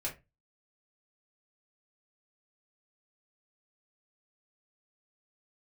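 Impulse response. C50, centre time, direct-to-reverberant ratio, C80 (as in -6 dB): 13.0 dB, 17 ms, -5.5 dB, 20.0 dB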